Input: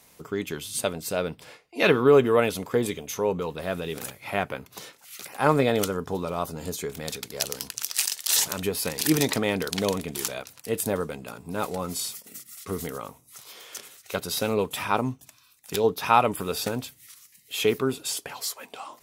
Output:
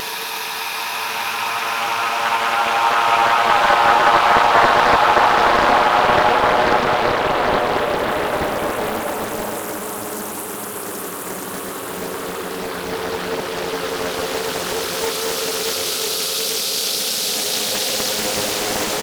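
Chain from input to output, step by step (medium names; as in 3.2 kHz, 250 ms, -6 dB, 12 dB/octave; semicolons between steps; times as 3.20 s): on a send: delay 115 ms -22 dB; on the sum: waveshaping leveller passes 2; high-pass 590 Hz 6 dB/octave; in parallel at +1 dB: gain riding 0.5 s; on the sum: Paulstretch 28×, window 0.25 s, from 15.99 s; loudspeaker Doppler distortion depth 0.92 ms; trim -4 dB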